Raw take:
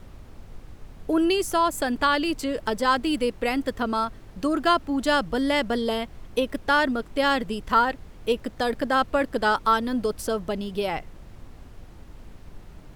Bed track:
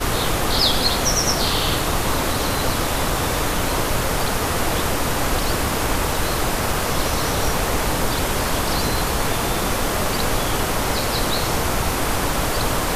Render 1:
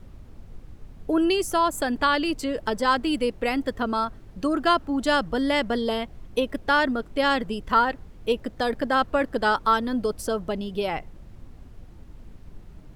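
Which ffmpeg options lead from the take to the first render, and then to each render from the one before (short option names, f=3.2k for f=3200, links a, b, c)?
-af "afftdn=nr=6:nf=-46"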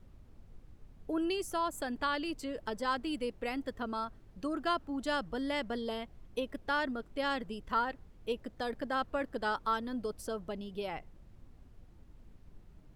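-af "volume=-11.5dB"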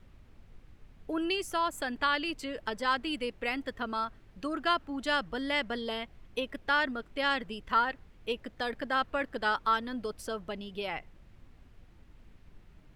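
-af "equalizer=f=2.3k:t=o:w=2:g=8.5"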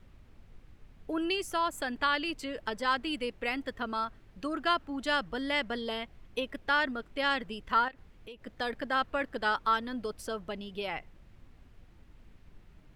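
-filter_complex "[0:a]asettb=1/sr,asplit=3[a][b][c];[a]atrim=end=7.884[d];[b]atrim=start=7.88:end=8.47,asetpts=PTS-STARTPTS,afade=t=in:d=0.004:c=qsin,afade=t=out:st=0.586:d=0.004:c=qsin,acompressor=threshold=-45dB:ratio=4:attack=3.2:release=140:knee=1:detection=peak[e];[c]atrim=start=8.466[f];[d][e]acrossfade=d=0.004:c1=hsin:c2=qsin[g];[g][f]acrossfade=d=0.004:c1=qsin:c2=hsin"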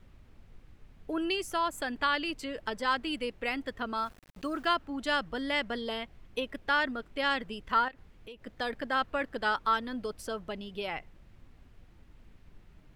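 -filter_complex "[0:a]asettb=1/sr,asplit=3[a][b][c];[a]atrim=end=3.974[d];[b]atrim=start=3.97:end=4.76,asetpts=PTS-STARTPTS,afade=t=in:d=0.004:c=qsin,afade=t=out:st=0.786:d=0.004:c=qsin,aeval=exprs='val(0)*gte(abs(val(0)),0.00299)':c=same[e];[c]atrim=start=4.756[f];[d][e]acrossfade=d=0.004:c1=hsin:c2=qsin[g];[g][f]acrossfade=d=0.004:c1=qsin:c2=hsin"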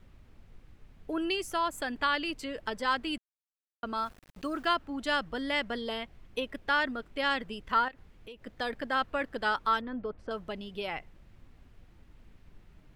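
-filter_complex "[0:a]asettb=1/sr,asplit=3[a][b][c];[a]atrim=end=9.814[d];[b]atrim=start=9.81:end=10.31,asetpts=PTS-STARTPTS,afade=t=in:d=0.004:c=qsin,afade=t=out:st=0.496:d=0.004:c=qsin,lowpass=1.7k[e];[c]atrim=start=10.306[f];[d][e]acrossfade=d=0.004:c1=hsin:c2=qsin[g];[g][f]acrossfade=d=0.004:c1=qsin:c2=hsin,asplit=3[h][i][j];[h]atrim=end=3.18,asetpts=PTS-STARTPTS,afade=t=out:st=3.176:d=0.004:c=hsin[k];[i]atrim=start=3.18:end=3.83,asetpts=PTS-STARTPTS,volume=0[l];[j]atrim=start=3.83,asetpts=PTS-STARTPTS,afade=t=in:d=0.004:c=hsin[m];[k][l][m]concat=n=3:v=0:a=1"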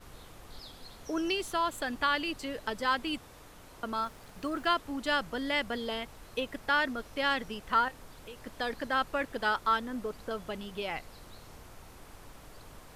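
-filter_complex "[1:a]volume=-31.5dB[a];[0:a][a]amix=inputs=2:normalize=0"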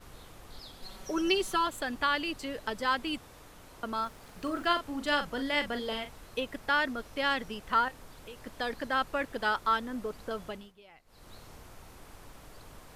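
-filter_complex "[0:a]asettb=1/sr,asplit=3[a][b][c];[a]atrim=end=0.824[d];[b]atrim=start=0.82:end=1.67,asetpts=PTS-STARTPTS,afade=t=in:d=0.004:c=qsin,afade=t=out:st=0.846:d=0.004:c=qsin,aecho=1:1:5.3:0.9,atrim=end_sample=37485[e];[c]atrim=start=1.666[f];[d][e]acrossfade=d=0.004:c1=hsin:c2=qsin[g];[g][f]acrossfade=d=0.004:c1=qsin:c2=hsin,asettb=1/sr,asplit=3[h][i][j];[h]atrim=end=4.184[k];[i]atrim=start=4.18:end=6.25,asetpts=PTS-STARTPTS,afade=t=in:d=0.004:c=qsin,afade=t=out:st=2.066:d=0.004:c=qsin,asplit=2[l][m];[m]adelay=41,volume=-8.5dB[n];[l][n]amix=inputs=2:normalize=0,atrim=end_sample=91287[o];[j]atrim=start=6.246[p];[k][o]acrossfade=d=0.004:c1=hsin:c2=qsin[q];[q][p]acrossfade=d=0.004:c1=qsin:c2=hsin,asplit=3[r][s][t];[r]atrim=end=10.73,asetpts=PTS-STARTPTS,afade=t=out:st=10.45:d=0.28:silence=0.1[u];[s]atrim=start=10.73:end=11.05,asetpts=PTS-STARTPTS,volume=-20dB[v];[t]atrim=start=11.05,asetpts=PTS-STARTPTS,afade=t=in:d=0.28:silence=0.1[w];[u][v][w]concat=n=3:v=0:a=1"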